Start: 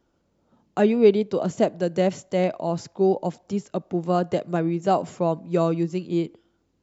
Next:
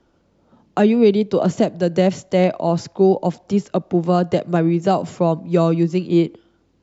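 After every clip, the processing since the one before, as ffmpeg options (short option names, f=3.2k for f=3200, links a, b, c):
-filter_complex "[0:a]lowpass=6.1k,acrossover=split=220|3500[a][b][c];[b]alimiter=limit=-16.5dB:level=0:latency=1:release=462[d];[a][d][c]amix=inputs=3:normalize=0,volume=8.5dB"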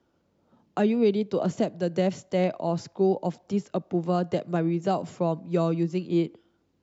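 -af "highpass=66,volume=-8.5dB"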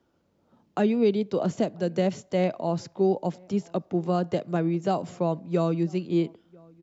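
-filter_complex "[0:a]asplit=2[a][b];[b]adelay=991.3,volume=-27dB,highshelf=f=4k:g=-22.3[c];[a][c]amix=inputs=2:normalize=0"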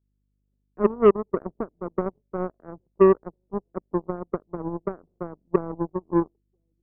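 -af "lowpass=f=400:t=q:w=3.4,aeval=exprs='val(0)+0.00891*(sin(2*PI*50*n/s)+sin(2*PI*2*50*n/s)/2+sin(2*PI*3*50*n/s)/3+sin(2*PI*4*50*n/s)/4+sin(2*PI*5*50*n/s)/5)':c=same,aeval=exprs='0.596*(cos(1*acos(clip(val(0)/0.596,-1,1)))-cos(1*PI/2))+0.15*(cos(3*acos(clip(val(0)/0.596,-1,1)))-cos(3*PI/2))+0.0188*(cos(7*acos(clip(val(0)/0.596,-1,1)))-cos(7*PI/2))+0.00422*(cos(8*acos(clip(val(0)/0.596,-1,1)))-cos(8*PI/2))':c=same"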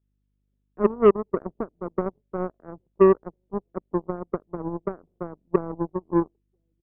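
-af "aresample=8000,aresample=44100"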